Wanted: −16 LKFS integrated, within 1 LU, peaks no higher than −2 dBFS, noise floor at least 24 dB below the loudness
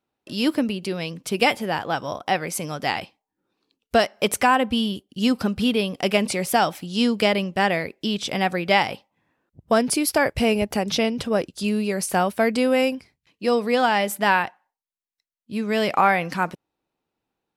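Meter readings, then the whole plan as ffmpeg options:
integrated loudness −22.5 LKFS; sample peak −5.0 dBFS; target loudness −16.0 LKFS
→ -af "volume=6.5dB,alimiter=limit=-2dB:level=0:latency=1"

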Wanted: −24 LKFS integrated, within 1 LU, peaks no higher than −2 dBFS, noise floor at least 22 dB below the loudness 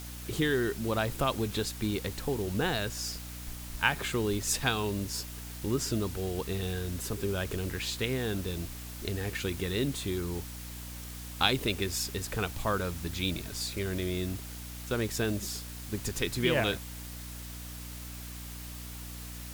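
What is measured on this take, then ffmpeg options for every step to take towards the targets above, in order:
mains hum 60 Hz; hum harmonics up to 300 Hz; level of the hum −41 dBFS; background noise floor −42 dBFS; target noise floor −55 dBFS; integrated loudness −33.0 LKFS; sample peak −9.5 dBFS; target loudness −24.0 LKFS
→ -af "bandreject=frequency=60:width_type=h:width=4,bandreject=frequency=120:width_type=h:width=4,bandreject=frequency=180:width_type=h:width=4,bandreject=frequency=240:width_type=h:width=4,bandreject=frequency=300:width_type=h:width=4"
-af "afftdn=noise_reduction=13:noise_floor=-42"
-af "volume=9dB,alimiter=limit=-2dB:level=0:latency=1"

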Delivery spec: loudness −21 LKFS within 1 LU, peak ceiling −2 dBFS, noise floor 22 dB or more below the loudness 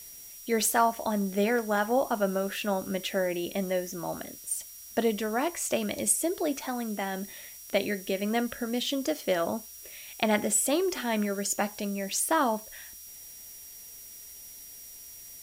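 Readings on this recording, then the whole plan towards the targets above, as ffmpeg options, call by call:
interfering tone 5,700 Hz; level of the tone −50 dBFS; background noise floor −47 dBFS; target noise floor −51 dBFS; integrated loudness −29.0 LKFS; sample peak −10.5 dBFS; target loudness −21.0 LKFS
→ -af "bandreject=frequency=5700:width=30"
-af "afftdn=noise_reduction=6:noise_floor=-47"
-af "volume=8dB"

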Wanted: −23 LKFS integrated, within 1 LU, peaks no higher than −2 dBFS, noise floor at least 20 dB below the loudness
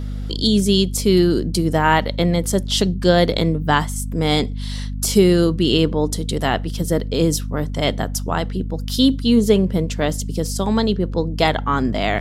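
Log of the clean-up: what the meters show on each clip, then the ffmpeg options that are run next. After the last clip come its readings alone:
mains hum 50 Hz; hum harmonics up to 250 Hz; level of the hum −23 dBFS; integrated loudness −19.0 LKFS; sample peak −1.5 dBFS; target loudness −23.0 LKFS
→ -af "bandreject=frequency=50:width_type=h:width=6,bandreject=frequency=100:width_type=h:width=6,bandreject=frequency=150:width_type=h:width=6,bandreject=frequency=200:width_type=h:width=6,bandreject=frequency=250:width_type=h:width=6"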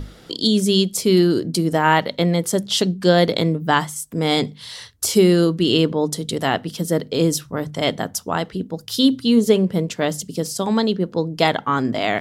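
mains hum none found; integrated loudness −19.5 LKFS; sample peak −1.5 dBFS; target loudness −23.0 LKFS
→ -af "volume=-3.5dB"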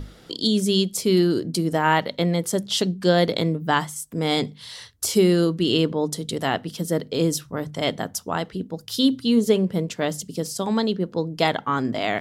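integrated loudness −23.0 LKFS; sample peak −5.0 dBFS; background noise floor −49 dBFS

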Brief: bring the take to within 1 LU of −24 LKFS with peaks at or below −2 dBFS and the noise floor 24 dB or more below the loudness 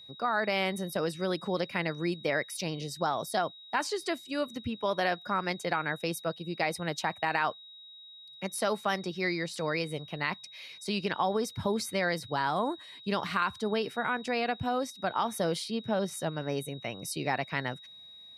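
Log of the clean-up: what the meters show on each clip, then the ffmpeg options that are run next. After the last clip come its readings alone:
interfering tone 3,800 Hz; level of the tone −48 dBFS; integrated loudness −32.0 LKFS; sample peak −14.0 dBFS; target loudness −24.0 LKFS
→ -af "bandreject=frequency=3800:width=30"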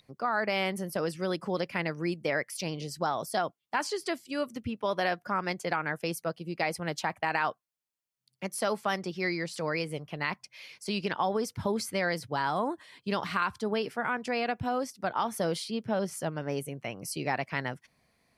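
interfering tone none found; integrated loudness −32.0 LKFS; sample peak −14.0 dBFS; target loudness −24.0 LKFS
→ -af "volume=8dB"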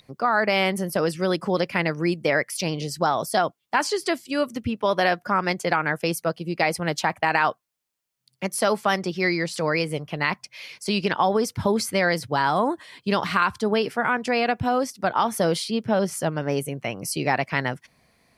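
integrated loudness −24.0 LKFS; sample peak −6.0 dBFS; background noise floor −74 dBFS

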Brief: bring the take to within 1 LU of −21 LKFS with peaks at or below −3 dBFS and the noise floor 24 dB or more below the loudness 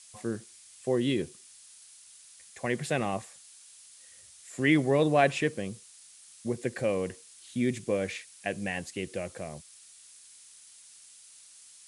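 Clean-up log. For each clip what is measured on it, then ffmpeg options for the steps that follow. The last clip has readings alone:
background noise floor −54 dBFS; target noise floor −55 dBFS; integrated loudness −30.5 LKFS; sample peak −10.0 dBFS; target loudness −21.0 LKFS
→ -af "afftdn=noise_reduction=6:noise_floor=-54"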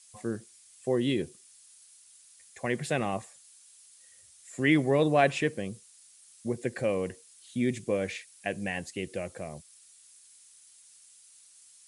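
background noise floor −57 dBFS; integrated loudness −30.5 LKFS; sample peak −10.0 dBFS; target loudness −21.0 LKFS
→ -af "volume=9.5dB,alimiter=limit=-3dB:level=0:latency=1"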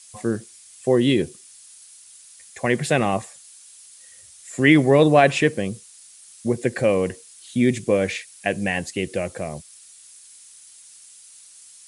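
integrated loudness −21.0 LKFS; sample peak −3.0 dBFS; background noise floor −48 dBFS

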